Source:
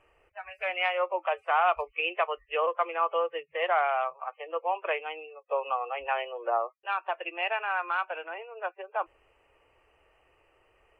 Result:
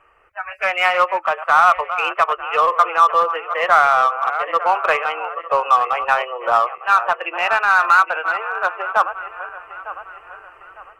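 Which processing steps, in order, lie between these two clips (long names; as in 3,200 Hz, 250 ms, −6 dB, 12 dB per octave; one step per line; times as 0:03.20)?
feedback delay that plays each chunk backwards 452 ms, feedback 58%, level −13.5 dB
parametric band 1,300 Hz +14.5 dB 1 octave
automatic gain control gain up to 7 dB
in parallel at −6 dB: gain into a clipping stage and back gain 18 dB
on the sum: level −1 dB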